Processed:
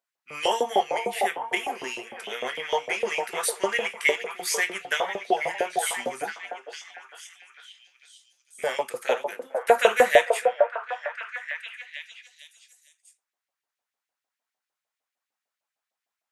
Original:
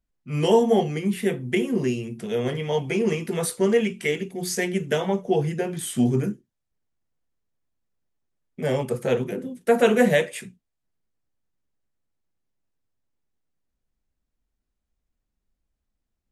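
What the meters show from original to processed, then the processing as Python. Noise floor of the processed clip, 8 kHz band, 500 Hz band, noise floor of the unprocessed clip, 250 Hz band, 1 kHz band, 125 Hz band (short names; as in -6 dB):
under -85 dBFS, +2.0 dB, -2.5 dB, -81 dBFS, -17.5 dB, +5.5 dB, under -25 dB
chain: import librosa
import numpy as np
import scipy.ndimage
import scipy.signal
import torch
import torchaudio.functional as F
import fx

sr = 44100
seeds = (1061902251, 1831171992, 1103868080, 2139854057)

y = fx.filter_lfo_highpass(x, sr, shape='saw_up', hz=6.6, low_hz=580.0, high_hz=2400.0, q=1.8)
y = fx.echo_stepped(y, sr, ms=453, hz=660.0, octaves=0.7, feedback_pct=70, wet_db=-2.5)
y = y * 10.0 ** (1.5 / 20.0)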